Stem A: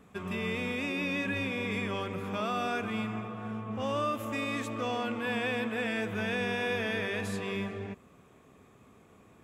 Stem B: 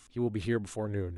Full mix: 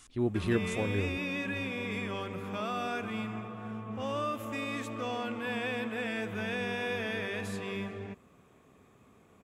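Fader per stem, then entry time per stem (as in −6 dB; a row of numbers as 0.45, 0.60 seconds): −2.5, +1.0 decibels; 0.20, 0.00 seconds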